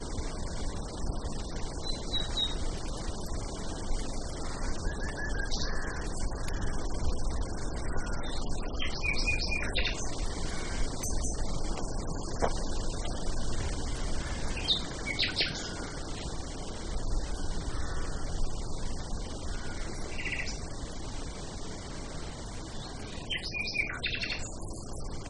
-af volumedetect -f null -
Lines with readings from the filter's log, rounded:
mean_volume: -31.6 dB
max_volume: -12.4 dB